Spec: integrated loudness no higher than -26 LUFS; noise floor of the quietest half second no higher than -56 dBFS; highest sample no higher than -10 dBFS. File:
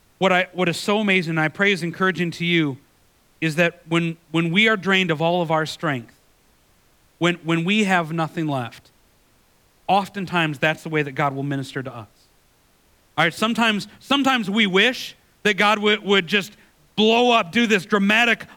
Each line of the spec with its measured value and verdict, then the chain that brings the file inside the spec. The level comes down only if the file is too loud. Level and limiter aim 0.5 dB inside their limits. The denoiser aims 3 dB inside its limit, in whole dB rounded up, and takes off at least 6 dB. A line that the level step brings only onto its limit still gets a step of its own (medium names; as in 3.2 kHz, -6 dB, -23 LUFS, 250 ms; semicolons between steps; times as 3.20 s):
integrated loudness -20.0 LUFS: fail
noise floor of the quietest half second -59 dBFS: pass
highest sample -5.0 dBFS: fail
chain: trim -6.5 dB